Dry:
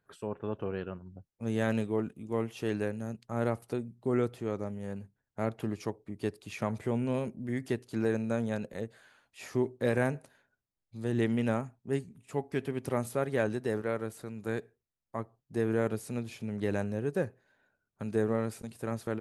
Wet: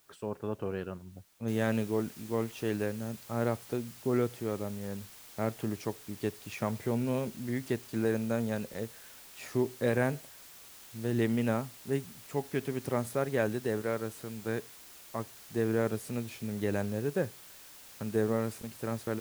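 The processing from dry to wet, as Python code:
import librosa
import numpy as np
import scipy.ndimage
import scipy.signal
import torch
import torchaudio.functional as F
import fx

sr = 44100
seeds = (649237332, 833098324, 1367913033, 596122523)

y = fx.noise_floor_step(x, sr, seeds[0], at_s=1.48, before_db=-67, after_db=-52, tilt_db=0.0)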